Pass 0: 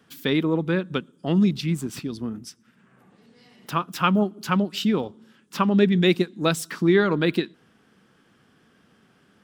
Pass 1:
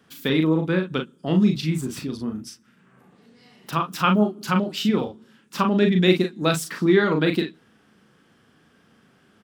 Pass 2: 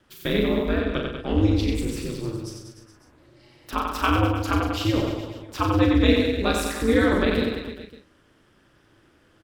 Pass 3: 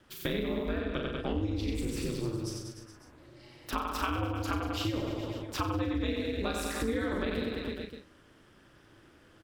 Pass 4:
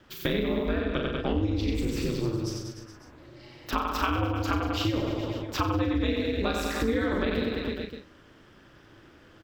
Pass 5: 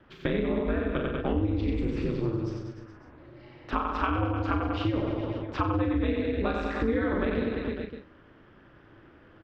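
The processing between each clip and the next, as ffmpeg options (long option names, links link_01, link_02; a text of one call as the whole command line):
ffmpeg -i in.wav -af "aecho=1:1:38|51:0.562|0.2" out.wav
ffmpeg -i in.wav -af "aeval=exprs='val(0)*sin(2*PI*110*n/s)':channel_layout=same,aecho=1:1:90|189|297.9|417.7|549.5:0.631|0.398|0.251|0.158|0.1" out.wav
ffmpeg -i in.wav -af "acompressor=threshold=-29dB:ratio=6" out.wav
ffmpeg -i in.wav -af "equalizer=frequency=9700:width_type=o:width=0.47:gain=-13.5,volume=5dB" out.wav
ffmpeg -i in.wav -af "lowpass=2200" out.wav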